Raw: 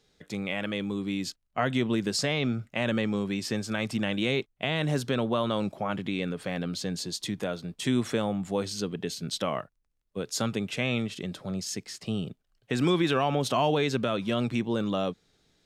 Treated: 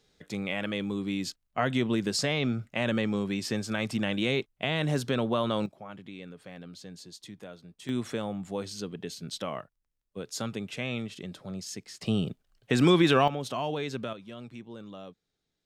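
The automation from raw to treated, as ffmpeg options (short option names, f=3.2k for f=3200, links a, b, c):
-af "asetnsamples=n=441:p=0,asendcmd='5.66 volume volume -13dB;7.89 volume volume -5dB;12.01 volume volume 3.5dB;13.28 volume volume -7dB;14.13 volume volume -15.5dB',volume=-0.5dB"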